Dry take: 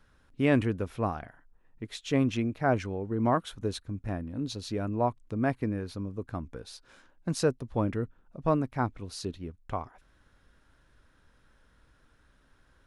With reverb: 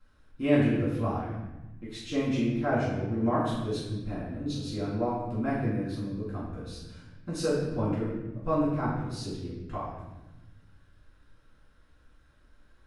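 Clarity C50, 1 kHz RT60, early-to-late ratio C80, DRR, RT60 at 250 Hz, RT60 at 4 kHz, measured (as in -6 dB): 0.5 dB, 0.95 s, 3.5 dB, -9.5 dB, 1.7 s, 0.85 s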